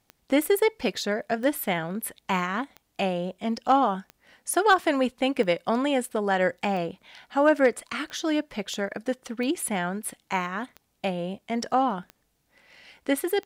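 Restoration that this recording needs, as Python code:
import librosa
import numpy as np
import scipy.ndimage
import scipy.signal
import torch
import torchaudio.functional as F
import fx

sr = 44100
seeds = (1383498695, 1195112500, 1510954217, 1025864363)

y = fx.fix_declip(x, sr, threshold_db=-10.0)
y = fx.fix_declick_ar(y, sr, threshold=10.0)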